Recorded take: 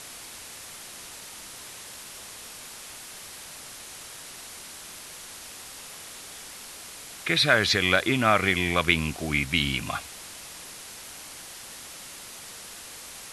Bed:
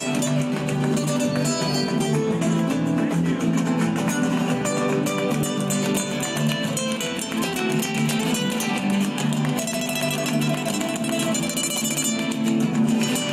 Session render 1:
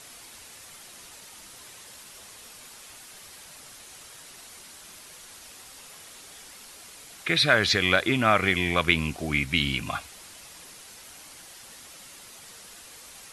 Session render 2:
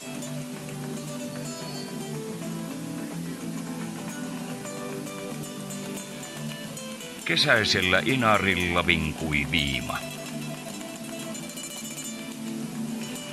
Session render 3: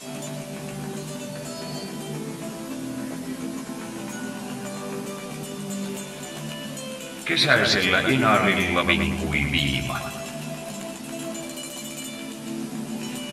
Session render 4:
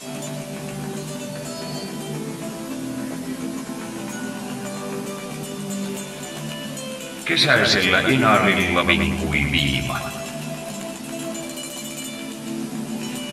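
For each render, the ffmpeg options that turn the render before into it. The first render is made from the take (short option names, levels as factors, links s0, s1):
-af "afftdn=nr=6:nf=-43"
-filter_complex "[1:a]volume=0.237[s0];[0:a][s0]amix=inputs=2:normalize=0"
-filter_complex "[0:a]asplit=2[s0][s1];[s1]adelay=15,volume=0.631[s2];[s0][s2]amix=inputs=2:normalize=0,asplit=2[s3][s4];[s4]adelay=111,lowpass=f=1700:p=1,volume=0.562,asplit=2[s5][s6];[s6]adelay=111,lowpass=f=1700:p=1,volume=0.51,asplit=2[s7][s8];[s8]adelay=111,lowpass=f=1700:p=1,volume=0.51,asplit=2[s9][s10];[s10]adelay=111,lowpass=f=1700:p=1,volume=0.51,asplit=2[s11][s12];[s12]adelay=111,lowpass=f=1700:p=1,volume=0.51,asplit=2[s13][s14];[s14]adelay=111,lowpass=f=1700:p=1,volume=0.51[s15];[s3][s5][s7][s9][s11][s13][s15]amix=inputs=7:normalize=0"
-af "volume=1.41,alimiter=limit=0.891:level=0:latency=1"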